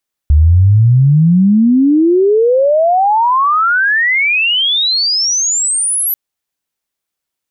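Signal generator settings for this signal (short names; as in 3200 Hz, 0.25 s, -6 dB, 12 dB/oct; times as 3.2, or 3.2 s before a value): chirp logarithmic 71 Hz -> 12000 Hz -4 dBFS -> -12 dBFS 5.84 s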